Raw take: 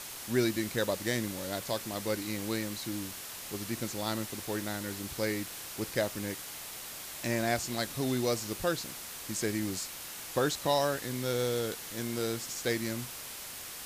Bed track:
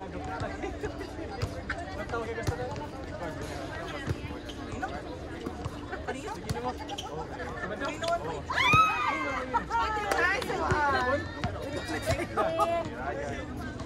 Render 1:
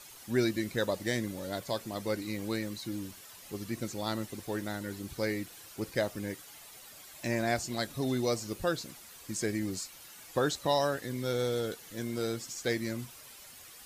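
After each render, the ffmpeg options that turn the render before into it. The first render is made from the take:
-af "afftdn=nr=11:nf=-43"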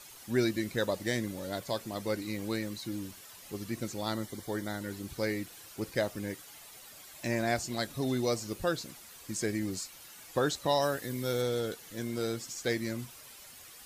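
-filter_complex "[0:a]asettb=1/sr,asplit=3[a][b][c];[a]atrim=end=4.104[d];[b]atrim=start=4.1:end=4.79,asetpts=PTS-STARTPTS,afade=t=in:d=0.004:c=qsin,afade=t=out:st=0.686:d=0.004:c=qsin,asuperstop=centerf=2600:order=12:qfactor=6.1[e];[c]atrim=start=4.786[f];[d][e]acrossfade=d=0.004:c1=hsin:c2=qsin[g];[g][f]acrossfade=d=0.004:c1=qsin:c2=hsin,asettb=1/sr,asplit=3[h][i][j];[h]atrim=end=10.824[k];[i]atrim=start=10.82:end=11.42,asetpts=PTS-STARTPTS,afade=t=in:d=0.004:c=qsin,afade=t=out:st=0.596:d=0.004:c=qsin,highshelf=f=11k:g=9.5[l];[j]atrim=start=11.416[m];[k][l]acrossfade=d=0.004:c1=hsin:c2=qsin[n];[n][m]acrossfade=d=0.004:c1=qsin:c2=hsin"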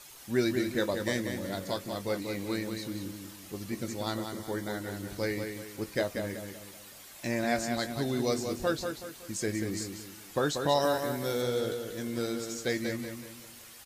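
-filter_complex "[0:a]asplit=2[a][b];[b]adelay=21,volume=-11.5dB[c];[a][c]amix=inputs=2:normalize=0,asplit=2[d][e];[e]adelay=187,lowpass=f=4.9k:p=1,volume=-6dB,asplit=2[f][g];[g]adelay=187,lowpass=f=4.9k:p=1,volume=0.4,asplit=2[h][i];[i]adelay=187,lowpass=f=4.9k:p=1,volume=0.4,asplit=2[j][k];[k]adelay=187,lowpass=f=4.9k:p=1,volume=0.4,asplit=2[l][m];[m]adelay=187,lowpass=f=4.9k:p=1,volume=0.4[n];[d][f][h][j][l][n]amix=inputs=6:normalize=0"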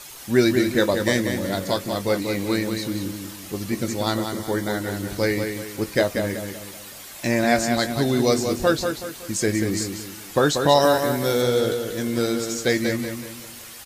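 -af "volume=10dB"

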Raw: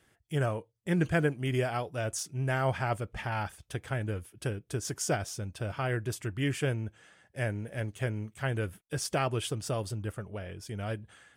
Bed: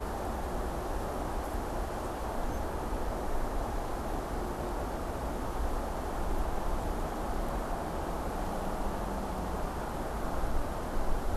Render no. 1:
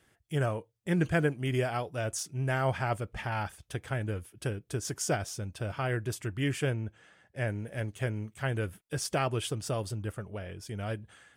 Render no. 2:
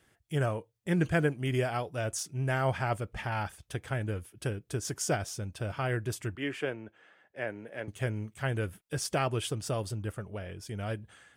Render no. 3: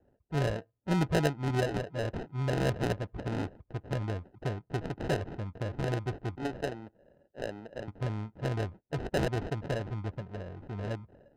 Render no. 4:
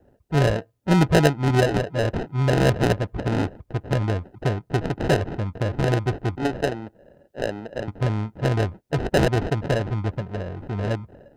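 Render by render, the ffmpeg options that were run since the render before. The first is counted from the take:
-filter_complex "[0:a]asettb=1/sr,asplit=3[a][b][c];[a]atrim=end=6.704[d];[b]atrim=start=6.7:end=7.48,asetpts=PTS-STARTPTS,afade=t=in:d=0.004:c=qsin,afade=t=out:st=0.776:d=0.004:c=qsin,highshelf=f=5.9k:g=-8[e];[c]atrim=start=7.476[f];[d][e]acrossfade=d=0.004:c1=hsin:c2=qsin[g];[g][f]acrossfade=d=0.004:c1=qsin:c2=hsin"
-filter_complex "[0:a]asettb=1/sr,asplit=3[a][b][c];[a]atrim=end=6.354[d];[b]atrim=start=6.35:end=7.88,asetpts=PTS-STARTPTS,afade=t=in:d=0.004:c=qsin,afade=t=out:st=1.526:d=0.004:c=qsin,acrossover=split=240 3600:gain=0.112 1 0.224[e][f][g];[e][f][g]amix=inputs=3:normalize=0[h];[c]atrim=start=7.876[i];[d][h]acrossfade=d=0.004:c1=hsin:c2=qsin[j];[j][i]acrossfade=d=0.004:c1=qsin:c2=hsin"
-af "acrusher=samples=39:mix=1:aa=0.000001,adynamicsmooth=sensitivity=3:basefreq=1.2k"
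-af "volume=10.5dB"

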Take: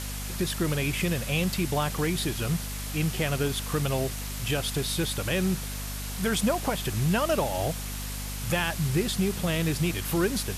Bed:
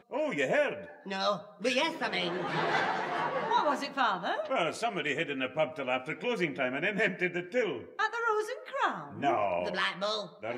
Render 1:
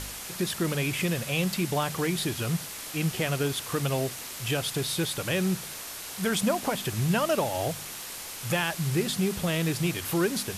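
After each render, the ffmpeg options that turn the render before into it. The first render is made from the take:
-af "bandreject=f=50:t=h:w=4,bandreject=f=100:t=h:w=4,bandreject=f=150:t=h:w=4,bandreject=f=200:t=h:w=4,bandreject=f=250:t=h:w=4"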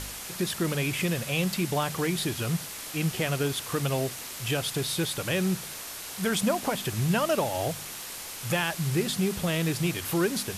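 -af anull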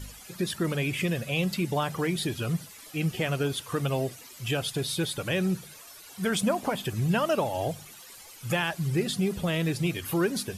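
-af "afftdn=nr=14:nf=-39"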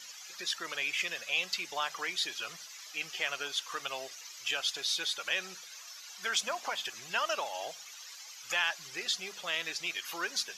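-af "highpass=1.1k,highshelf=f=7.6k:t=q:w=3:g=-7.5"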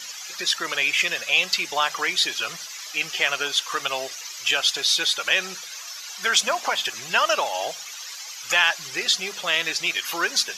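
-af "volume=11.5dB"

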